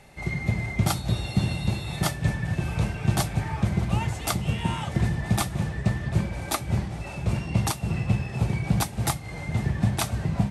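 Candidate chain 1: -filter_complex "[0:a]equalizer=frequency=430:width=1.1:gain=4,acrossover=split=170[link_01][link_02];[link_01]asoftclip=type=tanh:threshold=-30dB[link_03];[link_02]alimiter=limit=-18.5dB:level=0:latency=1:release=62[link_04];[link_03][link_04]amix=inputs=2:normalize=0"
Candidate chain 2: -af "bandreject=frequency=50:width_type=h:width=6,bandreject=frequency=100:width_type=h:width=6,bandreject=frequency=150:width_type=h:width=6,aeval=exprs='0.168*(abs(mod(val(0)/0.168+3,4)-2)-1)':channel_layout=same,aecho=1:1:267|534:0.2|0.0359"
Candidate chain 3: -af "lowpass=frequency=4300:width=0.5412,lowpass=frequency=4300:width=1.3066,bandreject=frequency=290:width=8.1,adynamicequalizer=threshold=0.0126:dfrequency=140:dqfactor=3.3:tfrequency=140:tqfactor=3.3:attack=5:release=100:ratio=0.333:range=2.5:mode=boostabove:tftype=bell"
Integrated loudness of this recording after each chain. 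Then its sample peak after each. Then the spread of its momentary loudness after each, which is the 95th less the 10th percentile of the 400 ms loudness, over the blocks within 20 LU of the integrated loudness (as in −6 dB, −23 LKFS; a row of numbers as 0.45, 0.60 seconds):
−30.0, −27.5, −25.5 LKFS; −16.5, −14.0, −8.5 dBFS; 3, 3, 4 LU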